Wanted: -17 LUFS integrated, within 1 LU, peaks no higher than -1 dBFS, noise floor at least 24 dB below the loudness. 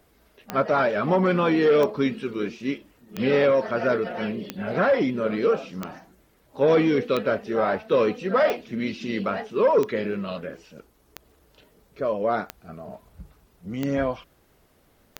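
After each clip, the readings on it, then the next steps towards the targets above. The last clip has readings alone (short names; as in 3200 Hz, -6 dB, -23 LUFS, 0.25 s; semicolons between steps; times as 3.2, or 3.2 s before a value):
clicks 12; loudness -23.5 LUFS; peak -9.5 dBFS; loudness target -17.0 LUFS
-> de-click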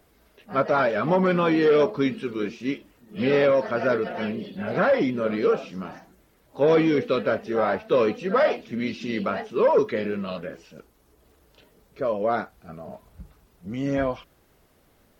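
clicks 0; loudness -23.5 LUFS; peak -9.5 dBFS; loudness target -17.0 LUFS
-> gain +6.5 dB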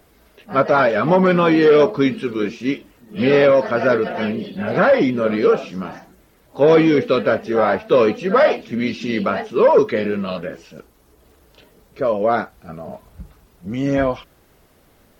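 loudness -17.0 LUFS; peak -3.0 dBFS; noise floor -55 dBFS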